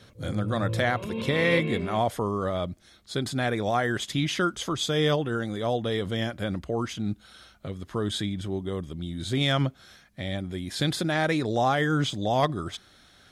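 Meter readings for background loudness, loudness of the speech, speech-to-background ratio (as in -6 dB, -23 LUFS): -32.5 LUFS, -28.0 LUFS, 4.5 dB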